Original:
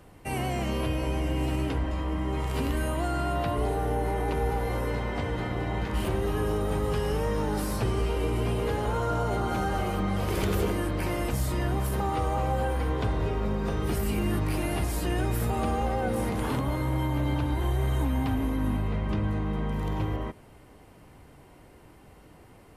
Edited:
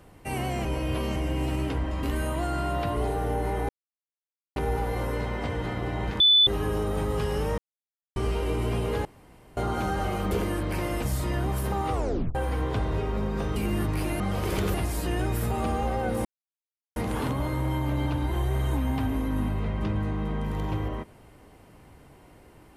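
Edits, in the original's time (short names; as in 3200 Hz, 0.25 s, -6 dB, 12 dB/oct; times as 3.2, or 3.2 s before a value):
0.65–1.16 reverse
2.03–2.64 cut
4.3 insert silence 0.87 s
5.94–6.21 bleep 3490 Hz -14.5 dBFS
7.32–7.9 mute
8.79–9.31 room tone
10.05–10.59 move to 14.73
12.21 tape stop 0.42 s
13.84–14.09 cut
16.24 insert silence 0.71 s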